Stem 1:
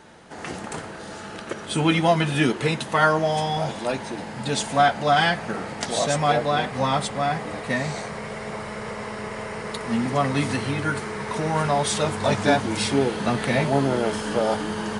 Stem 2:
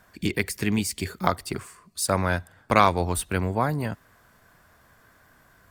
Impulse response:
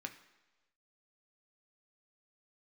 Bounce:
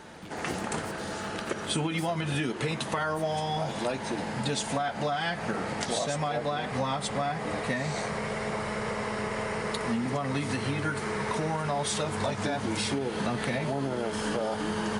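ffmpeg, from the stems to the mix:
-filter_complex "[0:a]alimiter=limit=-13.5dB:level=0:latency=1:release=109,acompressor=threshold=-28dB:ratio=6,volume=1.5dB[a];[1:a]acompressor=threshold=-30dB:ratio=6,volume=-13.5dB[b];[a][b]amix=inputs=2:normalize=0"

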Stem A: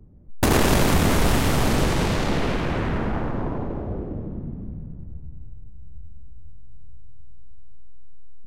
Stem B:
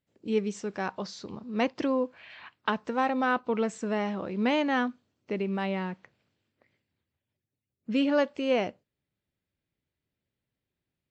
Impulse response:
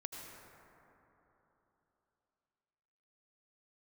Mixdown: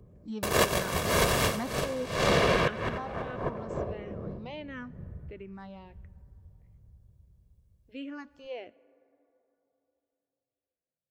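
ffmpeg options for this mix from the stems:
-filter_complex "[0:a]highpass=f=240:p=1,aecho=1:1:1.8:0.59,volume=2.5dB[a];[1:a]asplit=2[b][c];[c]afreqshift=-1.5[d];[b][d]amix=inputs=2:normalize=1,volume=-6dB,afade=t=out:st=2.43:d=0.69:silence=0.421697,asplit=3[e][f][g];[f]volume=-16.5dB[h];[g]apad=whole_len=373414[i];[a][i]sidechaincompress=threshold=-52dB:ratio=16:attack=23:release=157[j];[2:a]atrim=start_sample=2205[k];[h][k]afir=irnorm=-1:irlink=0[l];[j][e][l]amix=inputs=3:normalize=0"

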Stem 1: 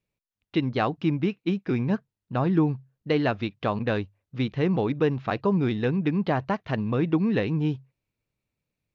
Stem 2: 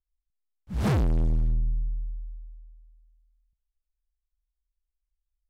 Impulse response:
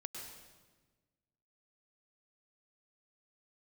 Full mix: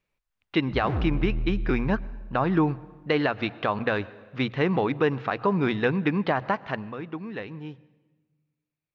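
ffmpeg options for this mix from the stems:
-filter_complex "[0:a]equalizer=f=1.4k:t=o:w=2.9:g=10.5,bandreject=f=60:t=h:w=6,bandreject=f=120:t=h:w=6,volume=-3dB,afade=t=out:st=6.39:d=0.55:silence=0.237137,asplit=2[a][b];[b]volume=-15dB[c];[1:a]lowpass=2.2k,volume=-3.5dB[d];[2:a]atrim=start_sample=2205[e];[c][e]afir=irnorm=-1:irlink=0[f];[a][d][f]amix=inputs=3:normalize=0,alimiter=limit=-12.5dB:level=0:latency=1:release=133"

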